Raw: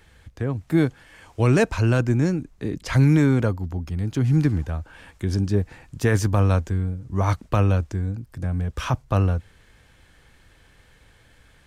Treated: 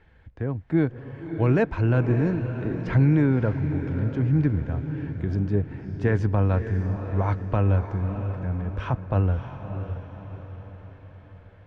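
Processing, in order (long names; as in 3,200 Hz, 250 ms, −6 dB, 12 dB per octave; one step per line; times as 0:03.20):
low-pass filter 2,000 Hz 12 dB per octave
notch filter 1,200 Hz, Q 10
feedback delay with all-pass diffusion 605 ms, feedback 50%, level −9 dB
level −2.5 dB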